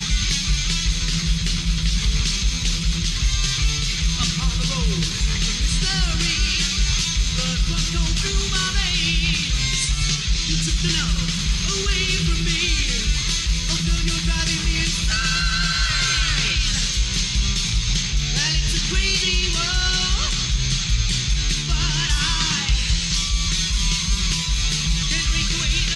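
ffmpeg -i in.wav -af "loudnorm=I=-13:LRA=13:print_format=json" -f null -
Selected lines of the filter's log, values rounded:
"input_i" : "-20.3",
"input_tp" : "-8.0",
"input_lra" : "1.4",
"input_thresh" : "-30.3",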